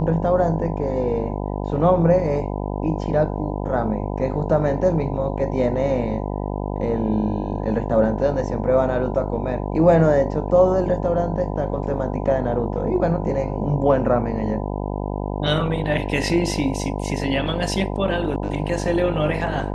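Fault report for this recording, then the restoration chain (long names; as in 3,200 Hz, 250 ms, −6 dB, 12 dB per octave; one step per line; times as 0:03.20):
mains buzz 50 Hz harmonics 20 −26 dBFS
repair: hum removal 50 Hz, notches 20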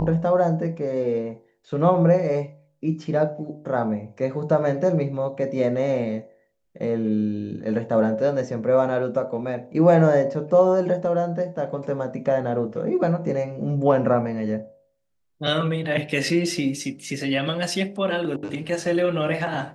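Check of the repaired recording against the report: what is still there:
none of them is left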